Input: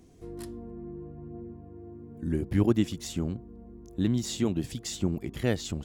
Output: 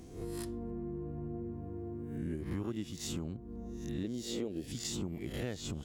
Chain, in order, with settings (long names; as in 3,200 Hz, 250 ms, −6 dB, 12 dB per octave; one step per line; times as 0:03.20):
peak hold with a rise ahead of every peak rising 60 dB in 0.51 s
0:04.03–0:04.68: octave-band graphic EQ 125/500/1,000/8,000 Hz −7/+11/−10/−5 dB
downward compressor 5 to 1, threshold −40 dBFS, peak gain reduction 20.5 dB
level +3.5 dB